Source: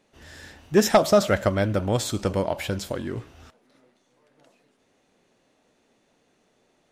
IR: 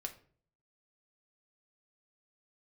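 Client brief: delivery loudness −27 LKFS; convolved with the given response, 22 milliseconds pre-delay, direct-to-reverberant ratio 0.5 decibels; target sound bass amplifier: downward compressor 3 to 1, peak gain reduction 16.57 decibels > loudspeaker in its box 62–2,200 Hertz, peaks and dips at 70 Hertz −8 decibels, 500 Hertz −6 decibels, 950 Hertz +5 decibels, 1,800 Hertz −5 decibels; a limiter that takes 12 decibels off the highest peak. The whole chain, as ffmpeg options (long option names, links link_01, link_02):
-filter_complex "[0:a]alimiter=limit=-19.5dB:level=0:latency=1,asplit=2[link_01][link_02];[1:a]atrim=start_sample=2205,adelay=22[link_03];[link_02][link_03]afir=irnorm=-1:irlink=0,volume=1.5dB[link_04];[link_01][link_04]amix=inputs=2:normalize=0,acompressor=threshold=-43dB:ratio=3,highpass=frequency=62:width=0.5412,highpass=frequency=62:width=1.3066,equalizer=frequency=70:width_type=q:width=4:gain=-8,equalizer=frequency=500:width_type=q:width=4:gain=-6,equalizer=frequency=950:width_type=q:width=4:gain=5,equalizer=frequency=1800:width_type=q:width=4:gain=-5,lowpass=frequency=2200:width=0.5412,lowpass=frequency=2200:width=1.3066,volume=17dB"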